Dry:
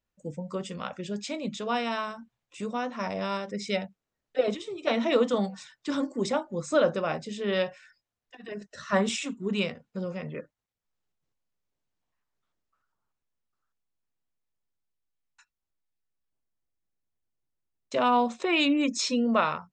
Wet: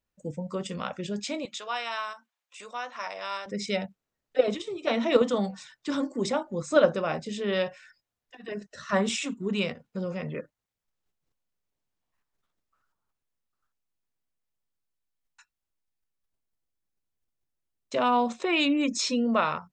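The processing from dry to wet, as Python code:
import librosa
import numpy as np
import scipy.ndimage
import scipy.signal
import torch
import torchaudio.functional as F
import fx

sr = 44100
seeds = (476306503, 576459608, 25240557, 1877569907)

p1 = fx.level_steps(x, sr, step_db=20)
p2 = x + (p1 * 10.0 ** (-1.0 / 20.0))
p3 = fx.highpass(p2, sr, hz=850.0, slope=12, at=(1.45, 3.46))
y = p3 * 10.0 ** (-1.5 / 20.0)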